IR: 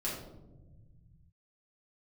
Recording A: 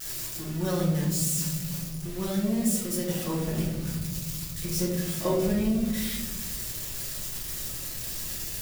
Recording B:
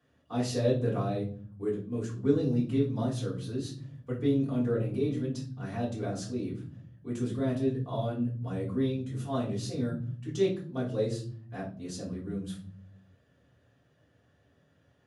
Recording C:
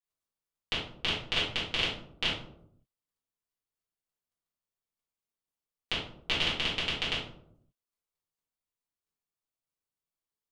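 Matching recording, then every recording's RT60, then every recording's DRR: A; 1.2, 0.45, 0.70 s; -7.0, -6.5, -10.5 dB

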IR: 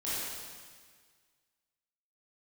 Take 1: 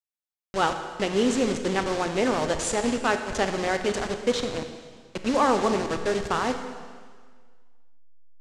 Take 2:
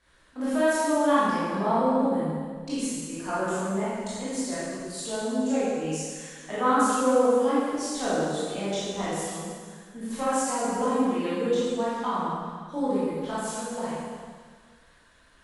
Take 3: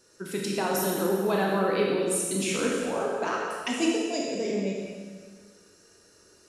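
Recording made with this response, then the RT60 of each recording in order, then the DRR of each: 2; 1.7, 1.7, 1.7 s; 7.0, -11.0, -2.5 dB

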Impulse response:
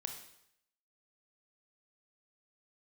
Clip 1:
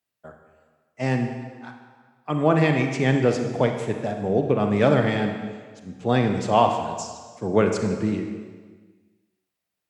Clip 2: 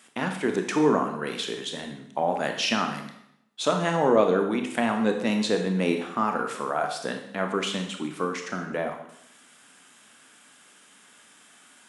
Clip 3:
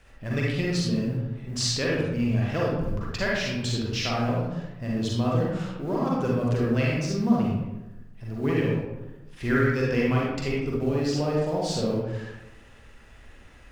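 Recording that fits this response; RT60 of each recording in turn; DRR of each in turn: 2; 1.5, 0.75, 1.0 s; 4.5, 4.0, -4.5 dB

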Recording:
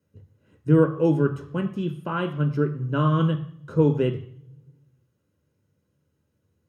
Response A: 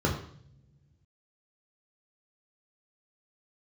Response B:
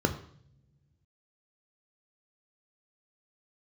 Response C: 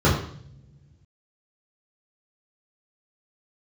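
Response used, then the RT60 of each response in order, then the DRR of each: B; not exponential, not exponential, not exponential; -1.5, 6.5, -8.0 dB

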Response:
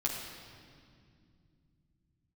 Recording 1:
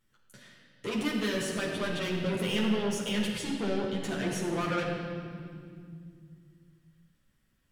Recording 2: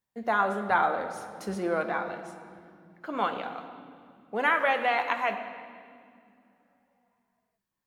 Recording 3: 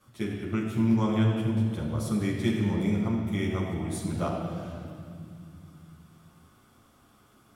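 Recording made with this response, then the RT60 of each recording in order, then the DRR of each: 1; 2.3, 2.1, 2.3 s; -5.0, 5.0, -9.5 dB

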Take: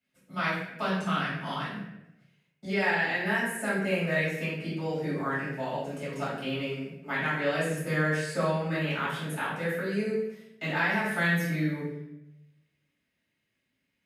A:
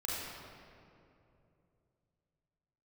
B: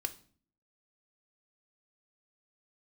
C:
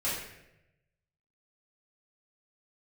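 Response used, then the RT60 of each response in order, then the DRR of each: C; 2.8, 0.45, 0.90 s; -6.0, 8.5, -11.0 dB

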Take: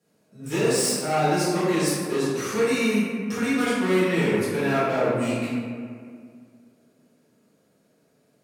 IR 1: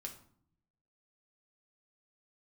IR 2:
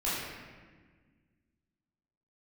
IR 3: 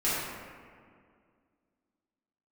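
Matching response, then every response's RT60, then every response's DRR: 3; 0.60, 1.5, 2.1 s; 1.5, -10.5, -11.5 dB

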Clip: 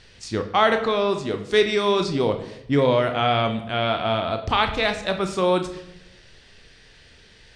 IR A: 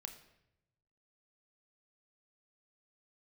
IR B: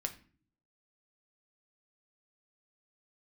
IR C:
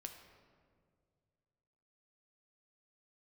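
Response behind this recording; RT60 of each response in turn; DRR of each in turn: A; 0.85, 0.45, 2.1 s; 6.0, 4.5, 4.0 dB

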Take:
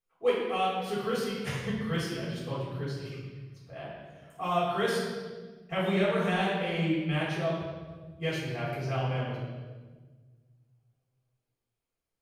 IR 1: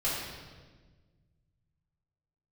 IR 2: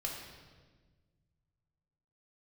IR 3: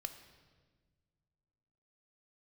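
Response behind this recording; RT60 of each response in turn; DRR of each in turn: 1; 1.4, 1.4, 1.5 s; -9.0, -2.0, 7.5 dB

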